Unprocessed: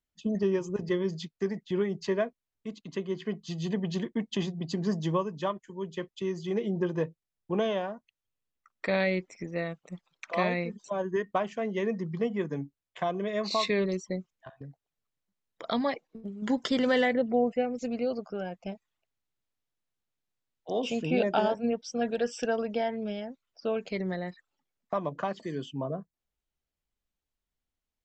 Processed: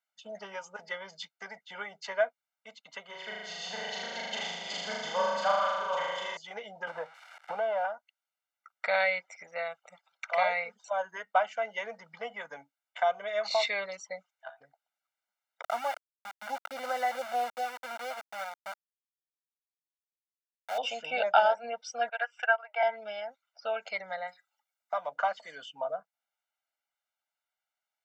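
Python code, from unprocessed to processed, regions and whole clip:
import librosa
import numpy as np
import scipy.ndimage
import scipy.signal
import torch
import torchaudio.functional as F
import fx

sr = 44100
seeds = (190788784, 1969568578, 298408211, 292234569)

y = fx.chain(x, sr, fx.reverse_delay(ms=500, wet_db=-3.0),
    fx.room_flutter(wall_m=6.7, rt60_s=1.5), at=(3.05, 6.37))
y = fx.chain(y, sr, fx.crossing_spikes(level_db=-26.5),
    fx.lowpass(hz=1400.0, slope=12),
    fx.band_squash(depth_pct=100), at=(6.87, 7.85))
y = fx.chain(y, sr, fx.lowpass(hz=1000.0, slope=12),
    fx.sample_gate(floor_db=-35.0),
    fx.peak_eq(hz=410.0, db=-12.5, octaves=0.5), at=(15.62, 20.78))
y = fx.chain(y, sr, fx.highpass(hz=690.0, slope=24),
    fx.high_shelf_res(hz=3300.0, db=-13.5, q=1.5),
    fx.transient(attack_db=4, sustain_db=-12), at=(22.09, 22.83))
y = fx.chain(y, sr, fx.high_shelf(hz=5000.0, db=10.0),
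    fx.comb_fb(f0_hz=180.0, decay_s=0.19, harmonics='all', damping=0.0, mix_pct=40), at=(24.27, 25.08))
y = scipy.signal.sosfilt(scipy.signal.butter(2, 780.0, 'highpass', fs=sr, output='sos'), y)
y = fx.peak_eq(y, sr, hz=1100.0, db=10.5, octaves=2.6)
y = y + 0.94 * np.pad(y, (int(1.4 * sr / 1000.0), 0))[:len(y)]
y = y * librosa.db_to_amplitude(-5.5)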